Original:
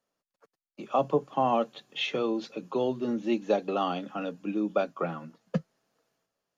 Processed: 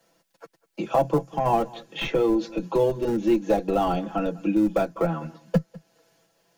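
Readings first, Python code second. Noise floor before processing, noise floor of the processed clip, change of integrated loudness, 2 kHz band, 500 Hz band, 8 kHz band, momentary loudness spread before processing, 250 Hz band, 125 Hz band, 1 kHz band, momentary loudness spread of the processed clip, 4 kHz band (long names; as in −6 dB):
below −85 dBFS, −72 dBFS, +5.5 dB, +2.5 dB, +5.5 dB, can't be measured, 8 LU, +6.5 dB, +9.0 dB, +4.0 dB, 6 LU, −0.5 dB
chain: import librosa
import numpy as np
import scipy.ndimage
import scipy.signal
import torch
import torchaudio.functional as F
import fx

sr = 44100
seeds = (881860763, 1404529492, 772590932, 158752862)

p1 = 10.0 ** (-16.5 / 20.0) * np.tanh(x / 10.0 ** (-16.5 / 20.0))
p2 = fx.notch(p1, sr, hz=1200.0, q=6.6)
p3 = fx.spec_box(p2, sr, start_s=1.22, length_s=0.24, low_hz=240.0, high_hz=4800.0, gain_db=-6)
p4 = fx.schmitt(p3, sr, flips_db=-24.5)
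p5 = p3 + F.gain(torch.from_numpy(p4), -9.0).numpy()
p6 = fx.dynamic_eq(p5, sr, hz=3200.0, q=1.1, threshold_db=-51.0, ratio=4.0, max_db=-7)
p7 = p6 + 0.81 * np.pad(p6, (int(6.0 * sr / 1000.0), 0))[:len(p6)]
p8 = p7 + fx.echo_single(p7, sr, ms=198, db=-23.5, dry=0)
p9 = fx.band_squash(p8, sr, depth_pct=40)
y = F.gain(torch.from_numpy(p9), 4.5).numpy()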